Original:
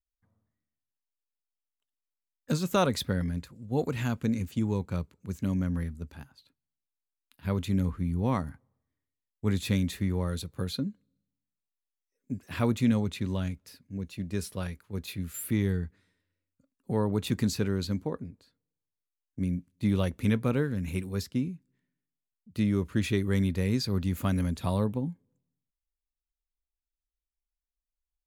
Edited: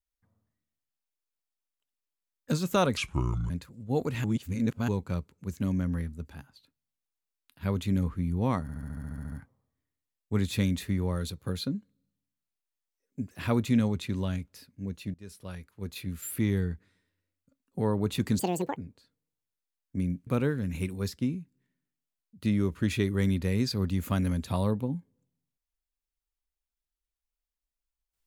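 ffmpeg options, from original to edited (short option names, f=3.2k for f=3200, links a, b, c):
-filter_complex "[0:a]asplit=19[a][b][c][d][e][f][g][h][i][j][k][l][m][n][o][p][q][r][s];[a]atrim=end=2.974[t];[b]atrim=start=2.97:end=3.32,asetpts=PTS-STARTPTS,asetrate=29106,aresample=44100,atrim=end_sample=23386,asetpts=PTS-STARTPTS[u];[c]atrim=start=3.316:end=4.062[v];[d]atrim=start=4.058:end=4.702,asetpts=PTS-STARTPTS,areverse[w];[e]atrim=start=4.698:end=8.512[x];[f]atrim=start=8.438:end=8.512[y];[g]atrim=start=8.438:end=8.512[z];[h]atrim=start=8.438:end=8.512[aa];[i]atrim=start=8.438:end=8.512[ab];[j]atrim=start=8.438:end=8.512[ac];[k]atrim=start=8.438:end=8.512[ad];[l]atrim=start=8.438:end=8.512[ae];[m]atrim=start=8.438:end=8.512[af];[n]atrim=start=8.438:end=8.512[ag];[o]atrim=start=8.438:end=14.26,asetpts=PTS-STARTPTS,afade=t=out:st=5.818:d=0.004:c=hsin:silence=0.0794328[ah];[p]atrim=start=14.26:end=17.514,asetpts=PTS-STARTPTS,afade=t=in:d=1.3:c=qsin:silence=0.0794328[ai];[q]atrim=start=17.51:end=18.2,asetpts=PTS-STARTPTS,asetrate=80703,aresample=44100[aj];[r]atrim=start=18.196:end=19.702[ak];[s]atrim=start=20.398[al];[t][u]acrossfade=d=0.004:c1=hsin:c2=hsin[am];[am][v]acrossfade=d=0.004:c1=hsin:c2=hsin[an];[an][w]acrossfade=d=0.004:c1=hsin:c2=hsin[ao];[ao][x]acrossfade=d=0.004:c1=hsin:c2=hsin[ap];[ap][y]acrossfade=d=0.004:c1=hsin:c2=hsin[aq];[aq][z]acrossfade=d=0.004:c1=hsin:c2=hsin[ar];[ar][aa]acrossfade=d=0.004:c1=hsin:c2=hsin[as];[as][ab]acrossfade=d=0.004:c1=hsin:c2=hsin[at];[at][ac]acrossfade=d=0.004:c1=hsin:c2=hsin[au];[au][ad]acrossfade=d=0.004:c1=hsin:c2=hsin[av];[av][ae]acrossfade=d=0.004:c1=hsin:c2=hsin[aw];[aw][af]acrossfade=d=0.004:c1=hsin:c2=hsin[ax];[ax][ag]acrossfade=d=0.004:c1=hsin:c2=hsin[ay];[ah][ai]concat=n=2:v=0:a=1[az];[ay][az]acrossfade=d=0.004:c1=hsin:c2=hsin[ba];[ba][aj]acrossfade=d=0.004:c1=hsin:c2=hsin[bb];[bb][ak]acrossfade=d=0.004:c1=hsin:c2=hsin[bc];[bc][al]acrossfade=d=0.004:c1=hsin:c2=hsin"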